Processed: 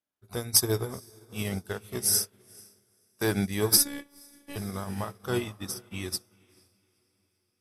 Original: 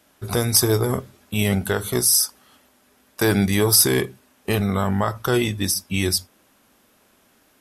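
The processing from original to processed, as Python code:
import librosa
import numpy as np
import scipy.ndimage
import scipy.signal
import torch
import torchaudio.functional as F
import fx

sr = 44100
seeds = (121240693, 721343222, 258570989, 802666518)

y = fx.echo_diffused(x, sr, ms=476, feedback_pct=52, wet_db=-10.0)
y = fx.robotise(y, sr, hz=284.0, at=(3.77, 4.56))
y = fx.upward_expand(y, sr, threshold_db=-34.0, expansion=2.5)
y = y * 10.0 ** (-3.0 / 20.0)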